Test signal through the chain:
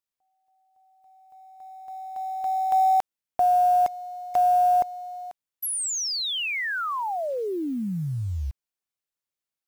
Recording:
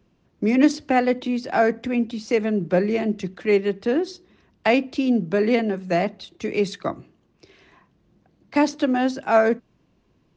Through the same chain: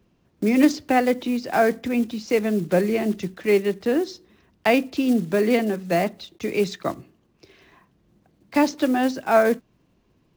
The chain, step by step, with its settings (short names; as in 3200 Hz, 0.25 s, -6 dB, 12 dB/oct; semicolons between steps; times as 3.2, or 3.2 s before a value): block floating point 5-bit